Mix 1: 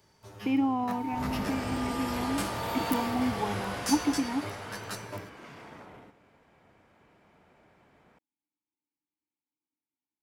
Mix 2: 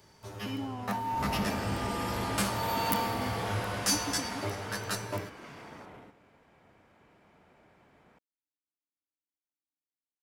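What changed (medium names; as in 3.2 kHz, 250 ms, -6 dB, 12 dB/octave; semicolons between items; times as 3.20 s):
speech -11.5 dB; first sound +5.0 dB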